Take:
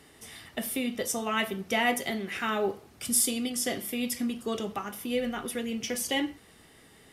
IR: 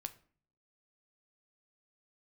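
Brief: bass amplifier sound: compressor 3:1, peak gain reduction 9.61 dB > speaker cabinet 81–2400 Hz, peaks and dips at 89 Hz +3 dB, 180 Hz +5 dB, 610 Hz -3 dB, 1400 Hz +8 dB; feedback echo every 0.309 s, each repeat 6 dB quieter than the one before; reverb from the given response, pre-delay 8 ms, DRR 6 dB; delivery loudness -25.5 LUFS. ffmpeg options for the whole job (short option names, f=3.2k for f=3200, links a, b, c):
-filter_complex "[0:a]aecho=1:1:309|618|927|1236|1545|1854:0.501|0.251|0.125|0.0626|0.0313|0.0157,asplit=2[a][b];[1:a]atrim=start_sample=2205,adelay=8[c];[b][c]afir=irnorm=-1:irlink=0,volume=-3dB[d];[a][d]amix=inputs=2:normalize=0,acompressor=threshold=-32dB:ratio=3,highpass=f=81:w=0.5412,highpass=f=81:w=1.3066,equalizer=f=89:t=q:w=4:g=3,equalizer=f=180:t=q:w=4:g=5,equalizer=f=610:t=q:w=4:g=-3,equalizer=f=1.4k:t=q:w=4:g=8,lowpass=f=2.4k:w=0.5412,lowpass=f=2.4k:w=1.3066,volume=9dB"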